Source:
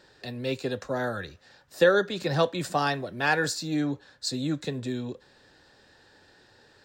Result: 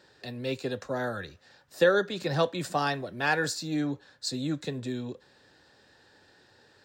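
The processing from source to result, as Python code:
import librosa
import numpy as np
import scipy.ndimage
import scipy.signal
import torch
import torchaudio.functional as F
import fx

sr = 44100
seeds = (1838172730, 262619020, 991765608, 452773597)

y = scipy.signal.sosfilt(scipy.signal.butter(2, 62.0, 'highpass', fs=sr, output='sos'), x)
y = y * 10.0 ** (-2.0 / 20.0)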